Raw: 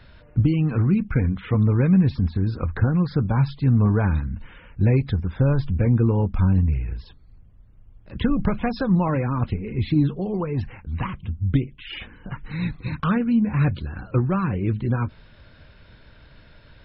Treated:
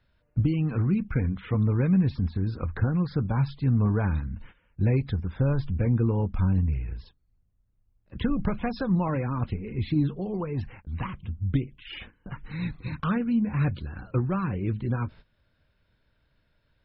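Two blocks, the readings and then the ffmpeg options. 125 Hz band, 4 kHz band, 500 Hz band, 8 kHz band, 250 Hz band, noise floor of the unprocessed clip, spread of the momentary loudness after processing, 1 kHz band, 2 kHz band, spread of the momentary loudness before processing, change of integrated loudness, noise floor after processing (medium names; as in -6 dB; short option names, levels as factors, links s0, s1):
-5.0 dB, -5.0 dB, -5.0 dB, no reading, -5.0 dB, -50 dBFS, 12 LU, -5.0 dB, -5.0 dB, 13 LU, -5.0 dB, -70 dBFS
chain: -af "agate=range=0.178:threshold=0.01:ratio=16:detection=peak,volume=0.562"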